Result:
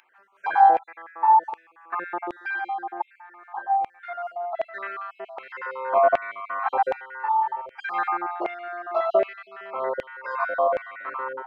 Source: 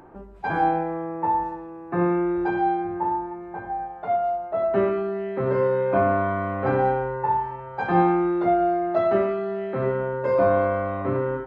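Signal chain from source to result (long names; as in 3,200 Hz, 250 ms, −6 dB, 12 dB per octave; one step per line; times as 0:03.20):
time-frequency cells dropped at random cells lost 37%
auto-filter high-pass saw down 1.3 Hz 600–2,500 Hz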